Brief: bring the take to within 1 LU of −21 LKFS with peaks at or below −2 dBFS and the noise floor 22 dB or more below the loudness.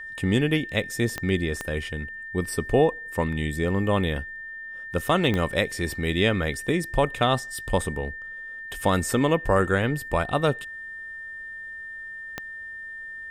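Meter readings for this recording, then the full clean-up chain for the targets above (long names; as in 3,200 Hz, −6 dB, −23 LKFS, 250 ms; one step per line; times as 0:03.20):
number of clicks 4; interfering tone 1,800 Hz; level of the tone −35 dBFS; integrated loudness −26.0 LKFS; sample peak −8.5 dBFS; target loudness −21.0 LKFS
→ click removal
notch filter 1,800 Hz, Q 30
level +5 dB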